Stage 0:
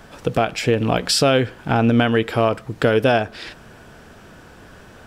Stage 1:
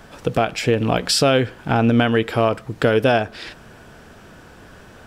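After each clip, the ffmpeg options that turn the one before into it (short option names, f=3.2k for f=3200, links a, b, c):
-af anull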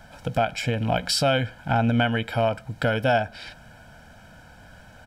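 -af "aecho=1:1:1.3:0.82,volume=-7dB"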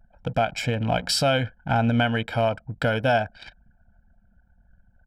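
-af "anlmdn=1.58"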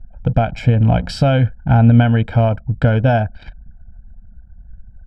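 -af "aemphasis=mode=reproduction:type=riaa,volume=2.5dB"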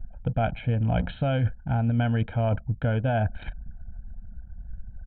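-af "areverse,acompressor=threshold=-22dB:ratio=6,areverse,aresample=8000,aresample=44100"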